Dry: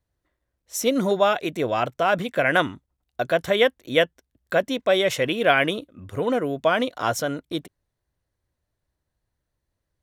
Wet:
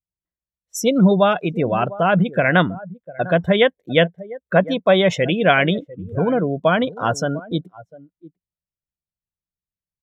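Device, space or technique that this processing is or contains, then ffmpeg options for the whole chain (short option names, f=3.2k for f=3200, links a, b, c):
low shelf boost with a cut just above: -filter_complex "[0:a]lowshelf=f=110:g=5,equalizer=f=250:t=o:w=0.57:g=-2.5,asettb=1/sr,asplit=3[a][b][c];[a]atrim=end=4.564[d];[b]atrim=start=4.56:end=5.16,asetpts=PTS-STARTPTS,afade=t=in:d=0.004:c=qsin,afade=t=out:st=0.596:d=0.004:c=qsin,equalizer=f=940:t=o:w=0.89:g=6[e];[c]atrim=start=5.156[f];[d][e]acrossfade=d=0.004:c1=hsin:c2=qsin[g];[g][f]acrossfade=d=0.004:c1=qsin:c2=hsin,asplit=2[h][i];[i]adelay=699.7,volume=-16dB,highshelf=f=4k:g=-15.7[j];[h][j]amix=inputs=2:normalize=0,afftdn=nr=27:nf=-31,equalizer=f=180:t=o:w=0.49:g=13,volume=3dB"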